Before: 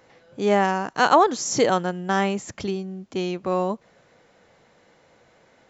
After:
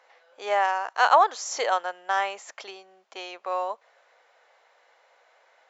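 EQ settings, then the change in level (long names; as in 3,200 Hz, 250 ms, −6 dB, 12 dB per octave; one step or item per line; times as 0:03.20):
high-pass filter 620 Hz 24 dB per octave
low-pass filter 3,500 Hz 6 dB per octave
0.0 dB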